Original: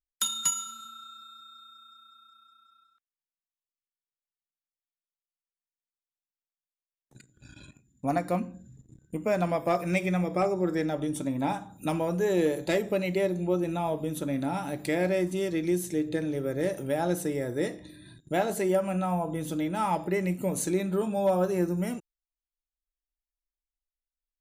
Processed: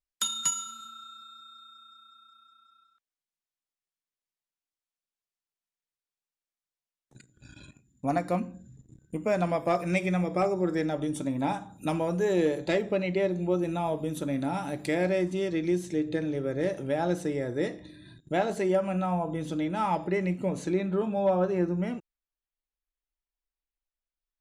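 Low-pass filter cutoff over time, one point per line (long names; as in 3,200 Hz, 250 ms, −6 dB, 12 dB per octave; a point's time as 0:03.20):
0:12.11 9,600 Hz
0:13.11 3,900 Hz
0:13.65 10,000 Hz
0:14.84 10,000 Hz
0:15.38 5,800 Hz
0:20.01 5,800 Hz
0:20.81 3,400 Hz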